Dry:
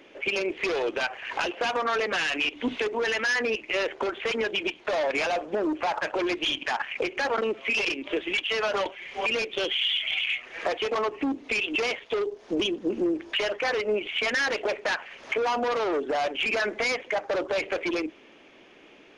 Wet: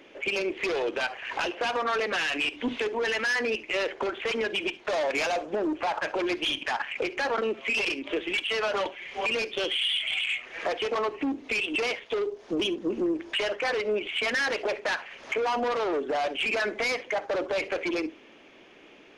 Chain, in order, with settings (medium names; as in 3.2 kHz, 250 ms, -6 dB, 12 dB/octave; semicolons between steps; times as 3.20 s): 4.80–5.56 s: dynamic bell 7 kHz, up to +6 dB, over -49 dBFS, Q 0.94; saturation -19 dBFS, distortion -22 dB; reverberation, pre-delay 42 ms, DRR 19 dB